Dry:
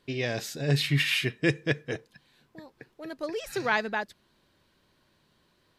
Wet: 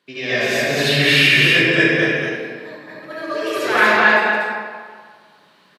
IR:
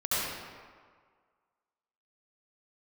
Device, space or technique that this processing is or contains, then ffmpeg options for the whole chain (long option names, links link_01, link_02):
stadium PA: -filter_complex "[0:a]highpass=frequency=160:width=0.5412,highpass=frequency=160:width=1.3066,equalizer=frequency=2000:width_type=o:width=2.2:gain=6,aecho=1:1:172|242:0.355|0.794[link_01];[1:a]atrim=start_sample=2205[link_02];[link_01][link_02]afir=irnorm=-1:irlink=0,volume=-1dB"